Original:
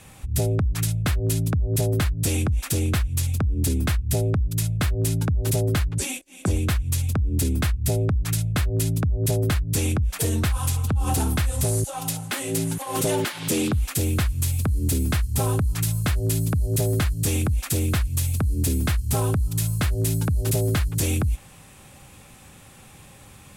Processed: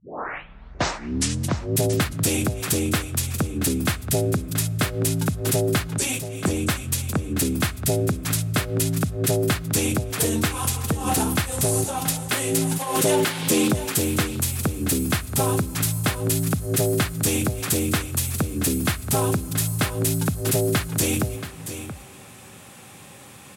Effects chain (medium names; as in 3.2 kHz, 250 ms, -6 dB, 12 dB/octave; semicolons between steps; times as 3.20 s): tape start-up on the opening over 1.75 s; high-pass 150 Hz 12 dB/octave; delay 679 ms -11.5 dB; on a send at -20.5 dB: reverberation RT60 5.1 s, pre-delay 50 ms; on the sum: trim +4 dB